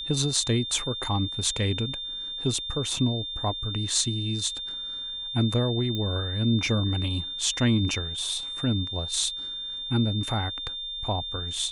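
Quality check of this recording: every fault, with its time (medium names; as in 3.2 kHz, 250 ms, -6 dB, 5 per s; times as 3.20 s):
whine 3.6 kHz -32 dBFS
5.95 s: pop -19 dBFS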